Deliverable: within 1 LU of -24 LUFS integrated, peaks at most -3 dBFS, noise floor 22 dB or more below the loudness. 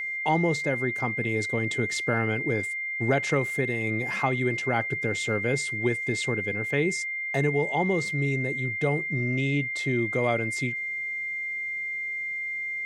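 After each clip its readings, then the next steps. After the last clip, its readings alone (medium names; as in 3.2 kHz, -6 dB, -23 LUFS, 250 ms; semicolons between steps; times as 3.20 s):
steady tone 2.1 kHz; tone level -29 dBFS; loudness -26.5 LUFS; peak level -10.0 dBFS; loudness target -24.0 LUFS
-> band-stop 2.1 kHz, Q 30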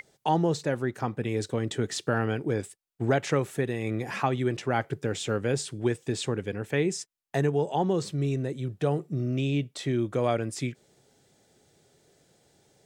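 steady tone not found; loudness -29.0 LUFS; peak level -11.0 dBFS; loudness target -24.0 LUFS
-> trim +5 dB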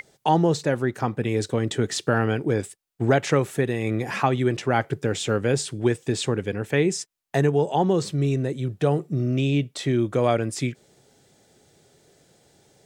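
loudness -24.0 LUFS; peak level -6.0 dBFS; noise floor -62 dBFS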